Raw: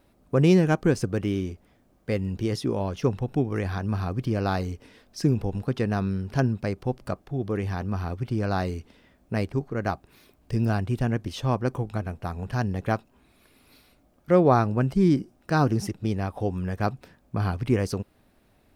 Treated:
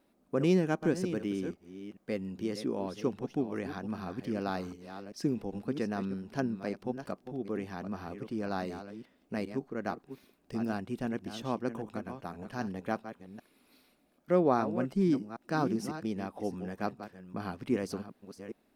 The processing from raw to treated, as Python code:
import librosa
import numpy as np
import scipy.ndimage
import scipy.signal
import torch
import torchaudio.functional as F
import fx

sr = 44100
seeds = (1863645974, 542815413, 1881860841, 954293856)

y = fx.reverse_delay(x, sr, ms=394, wet_db=-10.5)
y = fx.low_shelf_res(y, sr, hz=150.0, db=-11.0, q=1.5)
y = F.gain(torch.from_numpy(y), -8.0).numpy()